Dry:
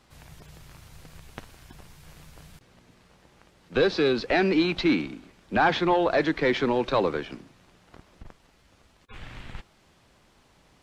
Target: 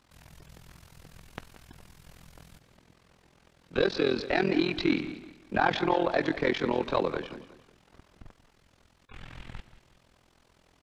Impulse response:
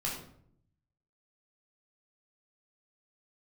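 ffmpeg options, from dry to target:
-af "tremolo=f=42:d=0.919,aecho=1:1:182|364|546:0.178|0.0605|0.0206"

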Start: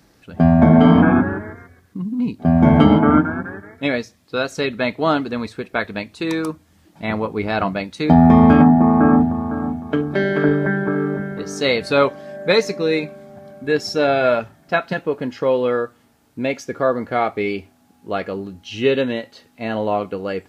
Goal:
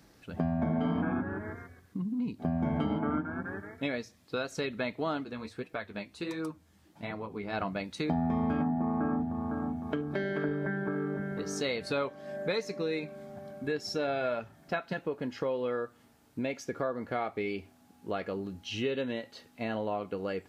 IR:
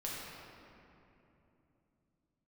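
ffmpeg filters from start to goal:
-filter_complex "[0:a]acompressor=threshold=0.0447:ratio=3,asplit=3[s0][s1][s2];[s0]afade=t=out:st=5.23:d=0.02[s3];[s1]flanger=delay=6.3:depth=9.3:regen=29:speed=1.4:shape=sinusoidal,afade=t=in:st=5.23:d=0.02,afade=t=out:st=7.52:d=0.02[s4];[s2]afade=t=in:st=7.52:d=0.02[s5];[s3][s4][s5]amix=inputs=3:normalize=0,volume=0.562"

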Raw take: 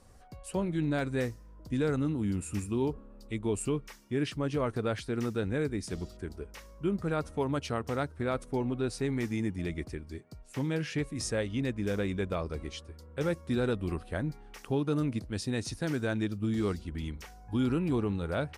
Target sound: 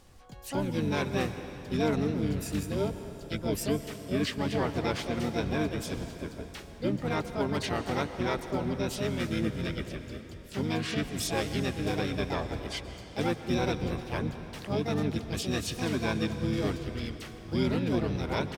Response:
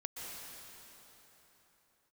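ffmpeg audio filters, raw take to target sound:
-filter_complex "[0:a]equalizer=f=3400:w=1.1:g=7.5,asplit=3[s0][s1][s2];[s1]asetrate=29433,aresample=44100,atempo=1.49831,volume=0.708[s3];[s2]asetrate=66075,aresample=44100,atempo=0.66742,volume=0.708[s4];[s0][s3][s4]amix=inputs=3:normalize=0,asplit=2[s5][s6];[1:a]atrim=start_sample=2205[s7];[s6][s7]afir=irnorm=-1:irlink=0,volume=0.562[s8];[s5][s8]amix=inputs=2:normalize=0,volume=0.562"

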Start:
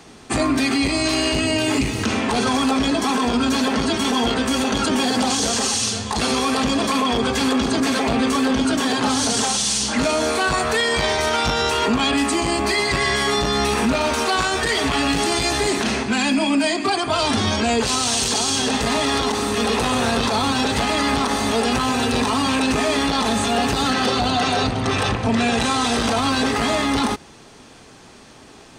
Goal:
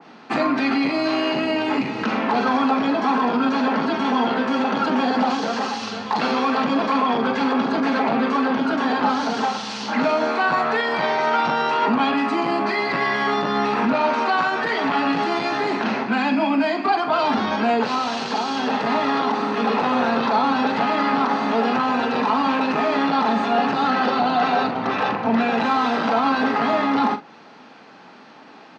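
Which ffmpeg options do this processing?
-filter_complex "[0:a]highpass=f=180:w=0.5412,highpass=f=180:w=1.3066,equalizer=f=380:t=q:w=4:g=-5,equalizer=f=850:t=q:w=4:g=5,equalizer=f=1400:t=q:w=4:g=4,equalizer=f=3400:t=q:w=4:g=-5,lowpass=f=4200:w=0.5412,lowpass=f=4200:w=1.3066,asplit=2[s0][s1];[s1]adelay=44,volume=0.299[s2];[s0][s2]amix=inputs=2:normalize=0,adynamicequalizer=threshold=0.0251:dfrequency=1800:dqfactor=0.7:tfrequency=1800:tqfactor=0.7:attack=5:release=100:ratio=0.375:range=2.5:mode=cutabove:tftype=highshelf"

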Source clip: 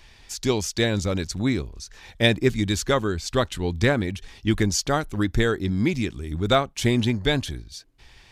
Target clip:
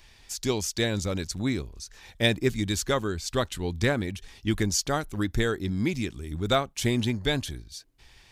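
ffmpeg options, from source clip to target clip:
-af "highshelf=f=7200:g=7.5,volume=0.596"

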